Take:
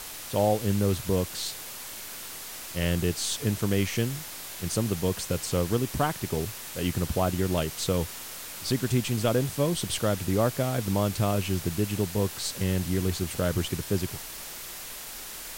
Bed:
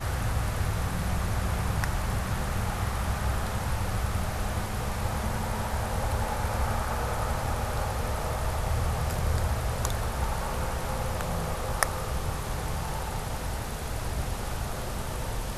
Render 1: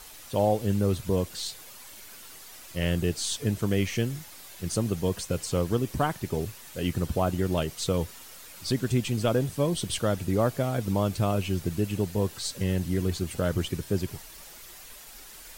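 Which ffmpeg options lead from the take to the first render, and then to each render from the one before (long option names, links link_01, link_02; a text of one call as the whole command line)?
ffmpeg -i in.wav -af "afftdn=noise_reduction=9:noise_floor=-40" out.wav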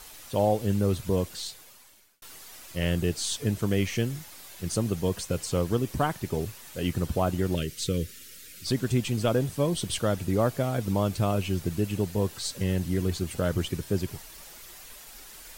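ffmpeg -i in.wav -filter_complex "[0:a]asettb=1/sr,asplit=3[link_01][link_02][link_03];[link_01]atrim=end=7.554[link_04];[link_02]atrim=start=7.55:end=8.67,asetpts=PTS-STARTPTS,afade=type=in:duration=0.004:curve=qsin,afade=type=out:start_time=1.116:duration=0.004:curve=qsin,asuperstop=centerf=860:order=4:qfactor=0.75[link_05];[link_03]atrim=start=8.666[link_06];[link_04][link_05]acrossfade=duration=0.004:curve1=hsin:curve2=qsin[link_07];[link_07][link_06]acrossfade=duration=0.004:curve1=qsin:curve2=hsin,asplit=2[link_08][link_09];[link_08]atrim=end=2.22,asetpts=PTS-STARTPTS,afade=type=out:start_time=1.24:duration=0.98[link_10];[link_09]atrim=start=2.22,asetpts=PTS-STARTPTS,afade=type=in:duration=0.004:curve=hsin[link_11];[link_10][link_11]concat=n=2:v=0:a=1" out.wav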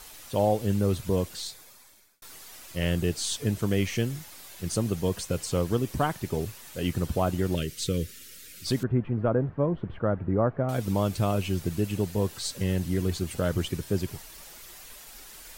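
ffmpeg -i in.wav -filter_complex "[0:a]asettb=1/sr,asplit=3[link_01][link_02][link_03];[link_01]atrim=end=1.414[link_04];[link_02]atrim=start=1.41:end=2.33,asetpts=PTS-STARTPTS,afade=type=in:duration=0.004:curve=qsin,afade=type=out:start_time=0.916:duration=0.004:curve=qsin,bandreject=frequency=2900:width=7.2[link_05];[link_03]atrim=start=2.326[link_06];[link_04][link_05]acrossfade=duration=0.004:curve1=hsin:curve2=qsin[link_07];[link_07][link_06]acrossfade=duration=0.004:curve1=qsin:curve2=hsin,asettb=1/sr,asplit=3[link_08][link_09][link_10];[link_08]atrim=end=8.834[link_11];[link_09]atrim=start=8.83:end=10.69,asetpts=PTS-STARTPTS,afade=type=in:duration=0.004:curve=qsin,afade=type=out:start_time=1.856:duration=0.004:curve=qsin,lowpass=frequency=1600:width=0.5412,lowpass=frequency=1600:width=1.3066[link_12];[link_10]atrim=start=10.686[link_13];[link_11][link_12]acrossfade=duration=0.004:curve1=hsin:curve2=qsin[link_14];[link_14][link_13]acrossfade=duration=0.004:curve1=qsin:curve2=hsin" out.wav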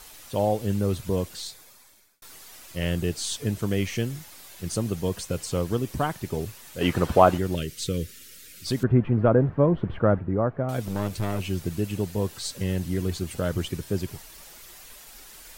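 ffmpeg -i in.wav -filter_complex "[0:a]asplit=3[link_01][link_02][link_03];[link_01]afade=type=out:start_time=6.8:duration=0.02[link_04];[link_02]equalizer=frequency=1000:width=0.34:gain=13,afade=type=in:start_time=6.8:duration=0.02,afade=type=out:start_time=7.37:duration=0.02[link_05];[link_03]afade=type=in:start_time=7.37:duration=0.02[link_06];[link_04][link_05][link_06]amix=inputs=3:normalize=0,asettb=1/sr,asplit=3[link_07][link_08][link_09];[link_07]atrim=end=8.834[link_10];[link_08]atrim=start=8.83:end=10.2,asetpts=PTS-STARTPTS,afade=type=in:duration=0.004:curve=qsin,afade=type=out:start_time=1.366:duration=0.004:curve=qsin,acontrast=50[link_11];[link_09]atrim=start=10.196[link_12];[link_10][link_11]acrossfade=duration=0.004:curve1=hsin:curve2=qsin[link_13];[link_13][link_12]acrossfade=duration=0.004:curve1=qsin:curve2=hsin,asettb=1/sr,asplit=3[link_14][link_15][link_16];[link_14]atrim=end=10.854[link_17];[link_15]atrim=start=10.85:end=11.4,asetpts=PTS-STARTPTS,afade=type=in:duration=0.004:curve=qsin,afade=type=out:start_time=0.546:duration=0.004:curve=qsin,aeval=exprs='clip(val(0),-1,0.0335)':channel_layout=same[link_18];[link_16]atrim=start=11.396[link_19];[link_17][link_18]acrossfade=duration=0.004:curve1=hsin:curve2=qsin[link_20];[link_20][link_19]acrossfade=duration=0.004:curve1=qsin:curve2=hsin" out.wav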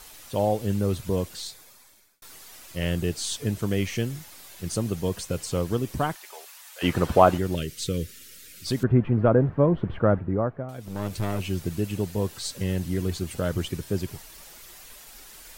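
ffmpeg -i in.wav -filter_complex "[0:a]asplit=3[link_01][link_02][link_03];[link_01]afade=type=out:start_time=6.14:duration=0.02[link_04];[link_02]highpass=frequency=740:width=0.5412,highpass=frequency=740:width=1.3066,afade=type=in:start_time=6.14:duration=0.02,afade=type=out:start_time=6.82:duration=0.02[link_05];[link_03]afade=type=in:start_time=6.82:duration=0.02[link_06];[link_04][link_05][link_06]amix=inputs=3:normalize=0,asplit=3[link_07][link_08][link_09];[link_07]atrim=end=10.73,asetpts=PTS-STARTPTS,afade=type=out:start_time=10.35:duration=0.38:silence=0.298538[link_10];[link_08]atrim=start=10.73:end=10.78,asetpts=PTS-STARTPTS,volume=-10.5dB[link_11];[link_09]atrim=start=10.78,asetpts=PTS-STARTPTS,afade=type=in:duration=0.38:silence=0.298538[link_12];[link_10][link_11][link_12]concat=n=3:v=0:a=1" out.wav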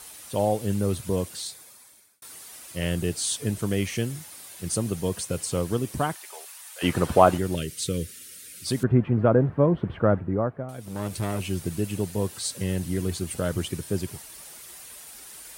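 ffmpeg -i in.wav -af "highpass=69,equalizer=frequency=9400:width_type=o:width=0.41:gain=9" out.wav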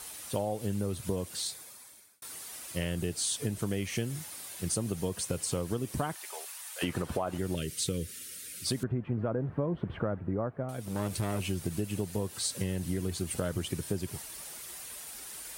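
ffmpeg -i in.wav -af "alimiter=limit=-13.5dB:level=0:latency=1:release=272,acompressor=threshold=-28dB:ratio=6" out.wav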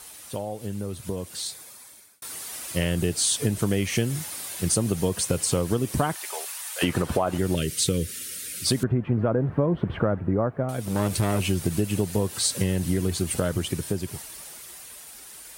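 ffmpeg -i in.wav -af "dynaudnorm=framelen=180:gausssize=21:maxgain=8.5dB" out.wav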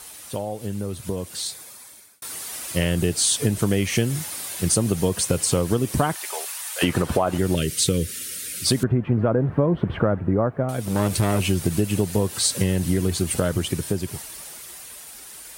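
ffmpeg -i in.wav -af "volume=3dB" out.wav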